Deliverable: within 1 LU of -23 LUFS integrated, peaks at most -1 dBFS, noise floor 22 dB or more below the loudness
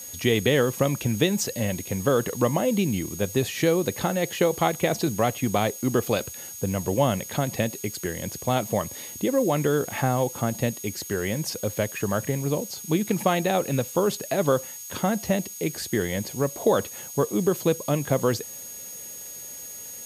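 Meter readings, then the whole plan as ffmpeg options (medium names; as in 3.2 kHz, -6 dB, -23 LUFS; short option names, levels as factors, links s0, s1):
steady tone 6.6 kHz; tone level -39 dBFS; noise floor -39 dBFS; noise floor target -48 dBFS; loudness -25.5 LUFS; peak level -6.0 dBFS; loudness target -23.0 LUFS
-> -af "bandreject=f=6600:w=30"
-af "afftdn=nr=9:nf=-39"
-af "volume=1.33"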